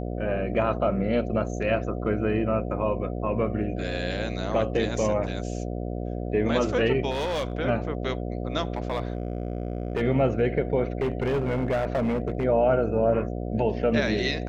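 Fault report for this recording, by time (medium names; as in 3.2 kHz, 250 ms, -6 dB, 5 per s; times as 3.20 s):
buzz 60 Hz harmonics 12 -31 dBFS
7.10–7.53 s: clipped -24 dBFS
8.72–10.02 s: clipped -22.5 dBFS
11.01–12.45 s: clipped -21 dBFS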